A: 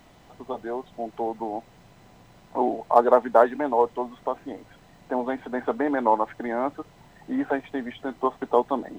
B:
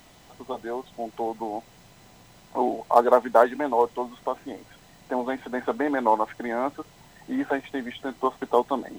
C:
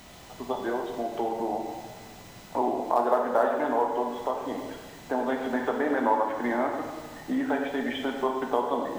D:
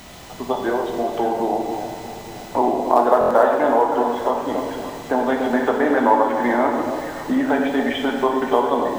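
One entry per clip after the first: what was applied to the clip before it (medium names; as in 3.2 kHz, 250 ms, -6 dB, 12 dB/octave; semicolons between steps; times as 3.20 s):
treble shelf 3 kHz +10 dB; trim -1 dB
compression 2:1, threshold -32 dBFS, peak gain reduction 12 dB; plate-style reverb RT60 1.5 s, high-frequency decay 0.9×, DRR 1 dB; trim +3 dB
on a send: echo whose repeats swap between lows and highs 284 ms, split 920 Hz, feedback 61%, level -7.5 dB; on the sum: buffer glitch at 3.19 s, samples 1024, times 4; trim +8 dB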